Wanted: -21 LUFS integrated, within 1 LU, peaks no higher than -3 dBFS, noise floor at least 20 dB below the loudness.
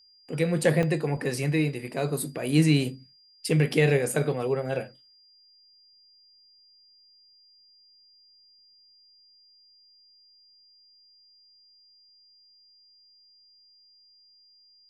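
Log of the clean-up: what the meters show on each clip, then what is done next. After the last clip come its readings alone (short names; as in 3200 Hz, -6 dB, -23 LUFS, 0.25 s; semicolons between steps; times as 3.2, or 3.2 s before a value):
dropouts 2; longest dropout 2.0 ms; steady tone 4800 Hz; tone level -56 dBFS; loudness -26.0 LUFS; peak -8.5 dBFS; loudness target -21.0 LUFS
-> interpolate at 0.83/3.73, 2 ms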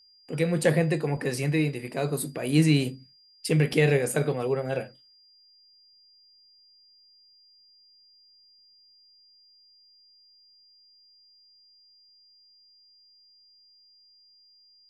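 dropouts 0; steady tone 4800 Hz; tone level -56 dBFS
-> notch 4800 Hz, Q 30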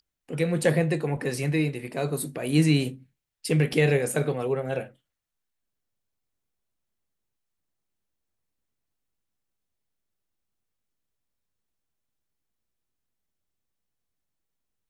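steady tone none; loudness -25.5 LUFS; peak -8.5 dBFS; loudness target -21.0 LUFS
-> gain +4.5 dB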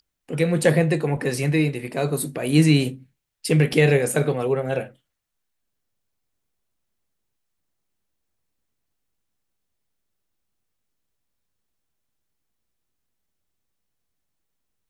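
loudness -21.0 LUFS; peak -4.0 dBFS; noise floor -78 dBFS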